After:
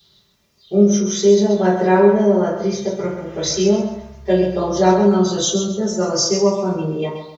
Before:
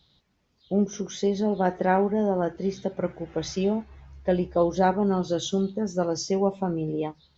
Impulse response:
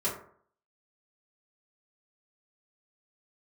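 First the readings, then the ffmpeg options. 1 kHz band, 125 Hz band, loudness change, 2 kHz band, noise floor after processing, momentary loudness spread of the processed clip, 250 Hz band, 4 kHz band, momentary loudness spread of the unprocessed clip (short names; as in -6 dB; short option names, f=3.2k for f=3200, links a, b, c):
+5.5 dB, +7.5 dB, +9.0 dB, +7.0 dB, -59 dBFS, 10 LU, +9.0 dB, +13.0 dB, 8 LU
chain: -filter_complex "[0:a]aecho=1:1:132|264|396|528:0.376|0.113|0.0338|0.0101[a];[1:a]atrim=start_sample=2205[b];[a][b]afir=irnorm=-1:irlink=0,crystalizer=i=5.5:c=0,volume=-3dB"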